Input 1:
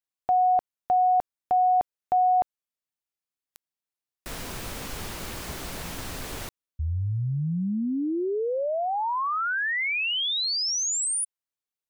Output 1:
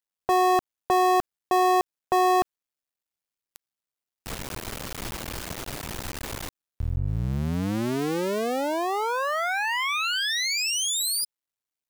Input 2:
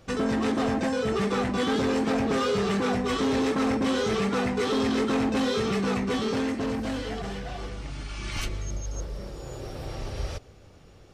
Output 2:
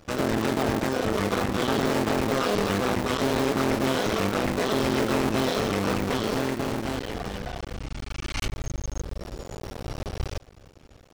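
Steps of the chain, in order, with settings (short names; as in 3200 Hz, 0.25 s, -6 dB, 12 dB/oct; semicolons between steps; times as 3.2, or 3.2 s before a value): cycle switcher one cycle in 2, muted; gain +3.5 dB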